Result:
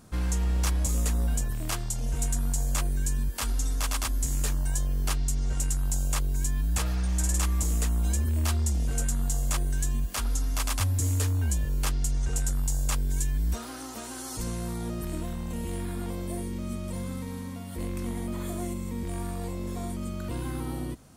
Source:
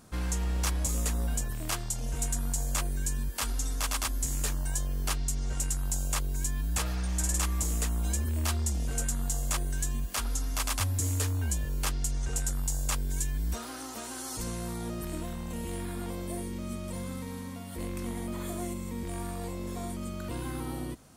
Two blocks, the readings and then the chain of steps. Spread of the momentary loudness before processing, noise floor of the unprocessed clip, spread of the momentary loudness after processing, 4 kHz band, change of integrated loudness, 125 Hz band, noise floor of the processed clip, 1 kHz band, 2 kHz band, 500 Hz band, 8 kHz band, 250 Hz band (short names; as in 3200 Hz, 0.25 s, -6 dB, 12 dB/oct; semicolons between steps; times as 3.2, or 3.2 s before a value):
8 LU, -40 dBFS, 8 LU, 0.0 dB, +2.5 dB, +4.0 dB, -39 dBFS, +0.5 dB, 0.0 dB, +1.0 dB, 0.0 dB, +2.5 dB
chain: low shelf 270 Hz +4.5 dB